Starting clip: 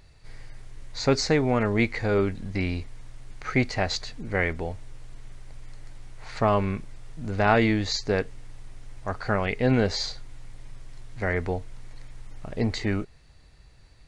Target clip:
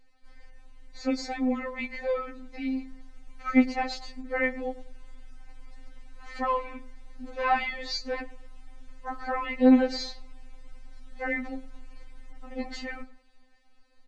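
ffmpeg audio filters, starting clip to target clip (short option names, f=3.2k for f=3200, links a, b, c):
-filter_complex "[0:a]aemphasis=mode=reproduction:type=cd,asplit=2[a][b];[b]adelay=106,lowpass=f=1.3k:p=1,volume=-16dB,asplit=2[c][d];[d]adelay=106,lowpass=f=1.3k:p=1,volume=0.35,asplit=2[e][f];[f]adelay=106,lowpass=f=1.3k:p=1,volume=0.35[g];[c][e][g]amix=inputs=3:normalize=0[h];[a][h]amix=inputs=2:normalize=0,dynaudnorm=f=900:g=7:m=7dB,afftfilt=real='re*3.46*eq(mod(b,12),0)':imag='im*3.46*eq(mod(b,12),0)':win_size=2048:overlap=0.75,volume=-5dB"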